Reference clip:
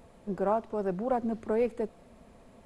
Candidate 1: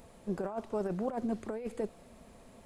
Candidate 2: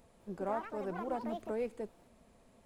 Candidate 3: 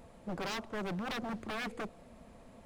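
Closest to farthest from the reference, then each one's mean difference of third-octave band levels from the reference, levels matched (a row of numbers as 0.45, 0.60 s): 2, 1, 3; 3.5, 5.5, 10.0 dB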